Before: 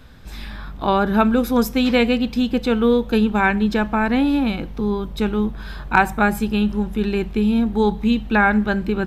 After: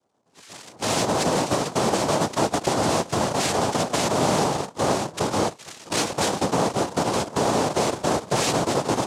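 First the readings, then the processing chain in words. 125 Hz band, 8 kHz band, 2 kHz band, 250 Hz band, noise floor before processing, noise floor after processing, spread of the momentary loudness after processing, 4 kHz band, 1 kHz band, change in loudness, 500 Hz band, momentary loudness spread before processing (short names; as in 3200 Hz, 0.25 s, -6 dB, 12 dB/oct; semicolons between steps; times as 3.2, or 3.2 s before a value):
-1.5 dB, n/a, -8.5 dB, -9.5 dB, -34 dBFS, -49 dBFS, 4 LU, +3.0 dB, -1.0 dB, -4.0 dB, -1.5 dB, 7 LU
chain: half-waves squared off; limiter -13.5 dBFS, peak gain reduction 10.5 dB; compressor 3:1, threshold -22 dBFS, peak gain reduction 5.5 dB; spectral noise reduction 27 dB; noise vocoder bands 2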